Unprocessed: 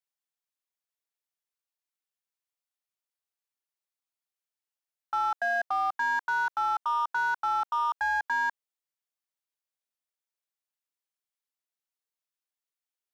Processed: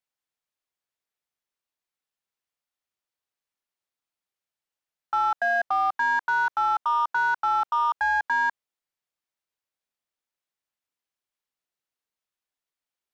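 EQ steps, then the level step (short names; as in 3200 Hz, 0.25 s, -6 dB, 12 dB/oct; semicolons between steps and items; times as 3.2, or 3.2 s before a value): high shelf 5900 Hz -8 dB; +4.5 dB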